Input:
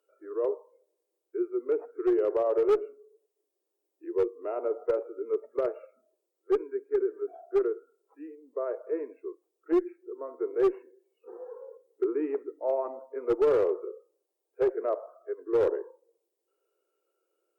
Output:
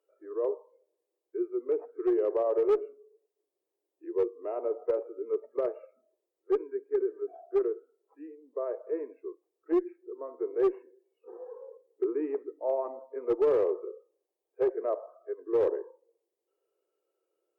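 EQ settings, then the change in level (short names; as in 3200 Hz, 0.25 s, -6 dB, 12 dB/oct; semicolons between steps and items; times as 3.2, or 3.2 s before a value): low shelf 170 Hz -7.5 dB; high shelf 2200 Hz -8 dB; notch 1400 Hz, Q 8.4; 0.0 dB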